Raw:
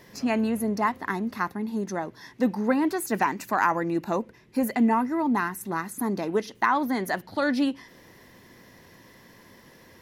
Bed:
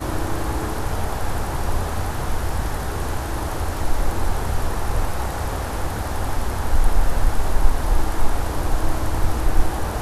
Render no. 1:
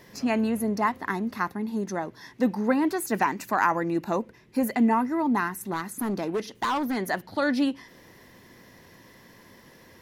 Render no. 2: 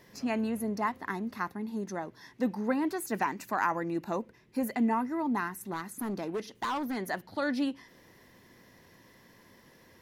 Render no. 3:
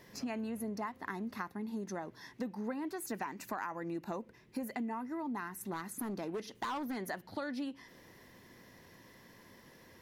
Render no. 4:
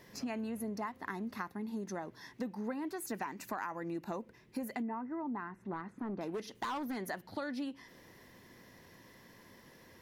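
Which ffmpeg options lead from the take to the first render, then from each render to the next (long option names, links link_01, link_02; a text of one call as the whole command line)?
ffmpeg -i in.wav -filter_complex "[0:a]asettb=1/sr,asplit=3[link_01][link_02][link_03];[link_01]atrim=end=5.734[link_04];[link_02]atrim=start=5.73:end=6.97,asetpts=PTS-STARTPTS,afade=type=in:duration=0.004:curve=qsin,afade=type=out:start_time=1.236:duration=0.004:curve=qsin,volume=23dB,asoftclip=hard,volume=-23dB[link_05];[link_03]atrim=start=6.966[link_06];[link_04][link_05]acrossfade=duration=0.004:curve1=hsin:curve2=qsin[link_07];[link_07][link_06]acrossfade=duration=0.004:curve1=qsin:curve2=hsin" out.wav
ffmpeg -i in.wav -af "volume=-6dB" out.wav
ffmpeg -i in.wav -af "acompressor=threshold=-36dB:ratio=6" out.wav
ffmpeg -i in.wav -filter_complex "[0:a]asettb=1/sr,asplit=3[link_01][link_02][link_03];[link_01]atrim=end=4.824[link_04];[link_02]atrim=start=4.82:end=6.21,asetpts=PTS-STARTPTS,afade=type=in:duration=0.004:curve=qsin,afade=type=out:start_time=1.386:duration=0.004:curve=qsin,lowpass=1700[link_05];[link_03]atrim=start=6.206[link_06];[link_04][link_05]acrossfade=duration=0.004:curve1=hsin:curve2=qsin[link_07];[link_07][link_06]acrossfade=duration=0.004:curve1=qsin:curve2=hsin" out.wav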